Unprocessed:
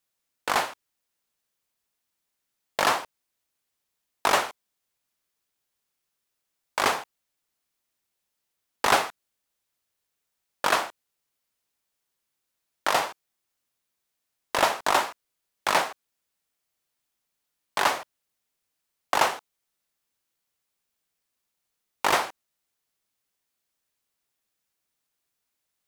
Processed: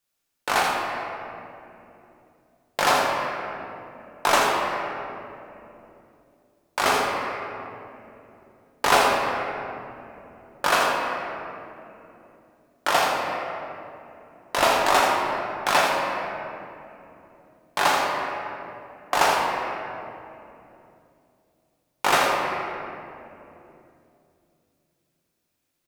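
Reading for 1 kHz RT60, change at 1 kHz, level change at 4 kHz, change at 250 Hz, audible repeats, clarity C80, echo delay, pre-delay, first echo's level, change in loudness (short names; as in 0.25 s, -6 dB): 2.6 s, +5.0 dB, +3.5 dB, +6.5 dB, 1, 0.5 dB, 81 ms, 6 ms, -8.5 dB, +2.0 dB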